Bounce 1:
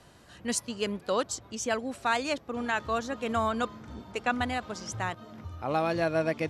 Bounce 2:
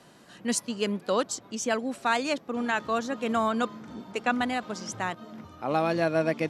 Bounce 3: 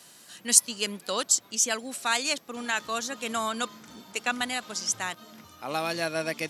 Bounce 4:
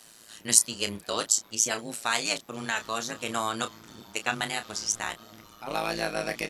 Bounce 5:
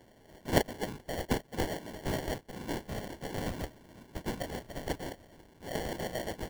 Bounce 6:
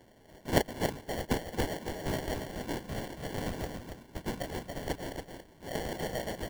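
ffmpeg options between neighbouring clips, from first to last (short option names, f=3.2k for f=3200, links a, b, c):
-af "lowshelf=f=120:t=q:w=1.5:g=-13.5,volume=1.5dB"
-af "crystalizer=i=9.5:c=0,volume=-8dB"
-filter_complex "[0:a]tremolo=f=110:d=0.974,asplit=2[a][b];[b]adelay=30,volume=-9.5dB[c];[a][c]amix=inputs=2:normalize=0,volume=3dB"
-af "afftfilt=real='hypot(re,im)*cos(2*PI*random(0))':imag='hypot(re,im)*sin(2*PI*random(1))':win_size=512:overlap=0.75,acrusher=samples=35:mix=1:aa=0.000001"
-af "aecho=1:1:280:0.473"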